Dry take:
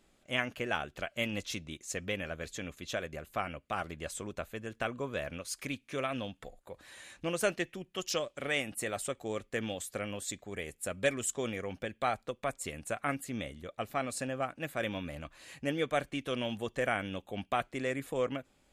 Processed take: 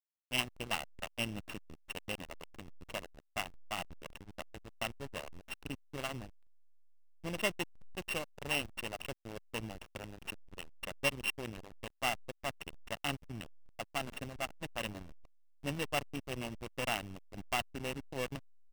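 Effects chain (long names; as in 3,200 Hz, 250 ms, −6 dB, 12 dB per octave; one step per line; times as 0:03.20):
samples sorted by size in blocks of 16 samples
parametric band 2,900 Hz +6 dB 0.46 octaves
comb filter 1 ms, depth 38%
repeating echo 71 ms, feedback 56%, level −21.5 dB
slack as between gear wheels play −26 dBFS
level −3 dB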